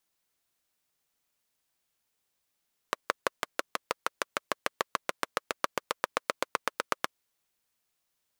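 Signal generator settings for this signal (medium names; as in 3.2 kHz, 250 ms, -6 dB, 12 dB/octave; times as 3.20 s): single-cylinder engine model, changing speed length 4.23 s, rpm 700, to 1000, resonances 550/1100 Hz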